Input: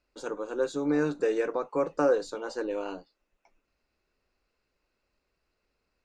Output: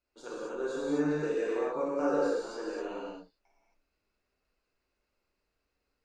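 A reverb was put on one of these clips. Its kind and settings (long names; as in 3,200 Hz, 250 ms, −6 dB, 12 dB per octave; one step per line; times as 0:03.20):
reverb whose tail is shaped and stops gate 290 ms flat, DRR −7.5 dB
level −11 dB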